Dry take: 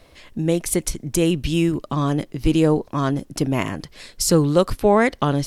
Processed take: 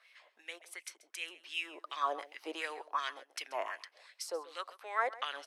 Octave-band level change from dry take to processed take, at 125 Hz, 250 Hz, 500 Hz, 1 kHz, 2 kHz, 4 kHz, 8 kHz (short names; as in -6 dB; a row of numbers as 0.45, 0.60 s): under -40 dB, -36.0 dB, -22.0 dB, -11.0 dB, -10.0 dB, -12.0 dB, -22.0 dB